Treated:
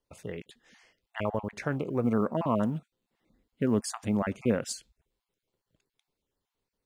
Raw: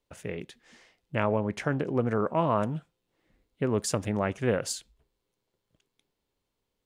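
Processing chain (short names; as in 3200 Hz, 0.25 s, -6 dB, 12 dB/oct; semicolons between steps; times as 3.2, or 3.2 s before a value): random spectral dropouts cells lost 24%; 2.04–4.72 bell 230 Hz +8.5 dB 0.58 oct; short-mantissa float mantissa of 6-bit; gain -2.5 dB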